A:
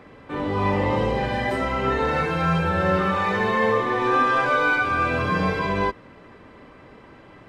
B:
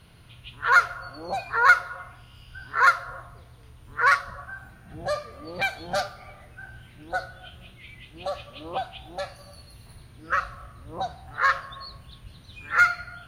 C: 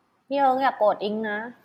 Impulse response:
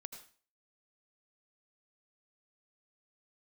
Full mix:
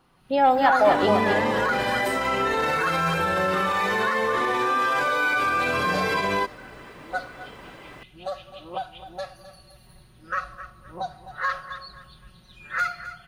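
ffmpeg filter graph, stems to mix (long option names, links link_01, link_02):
-filter_complex "[0:a]aemphasis=mode=production:type=bsi,adelay=550,volume=-6.5dB[link_01];[1:a]bandreject=frequency=2200:width=24,aecho=1:1:5.4:0.9,volume=-16dB,asplit=2[link_02][link_03];[link_03]volume=-4dB[link_04];[2:a]acontrast=66,volume=-4dB,asplit=2[link_05][link_06];[link_06]volume=-5.5dB[link_07];[link_01][link_02]amix=inputs=2:normalize=0,dynaudnorm=framelen=160:gausssize=3:maxgain=10.5dB,alimiter=limit=-15.5dB:level=0:latency=1:release=48,volume=0dB[link_08];[link_04][link_07]amix=inputs=2:normalize=0,aecho=0:1:259|518|777|1036:1|0.3|0.09|0.027[link_09];[link_05][link_08][link_09]amix=inputs=3:normalize=0"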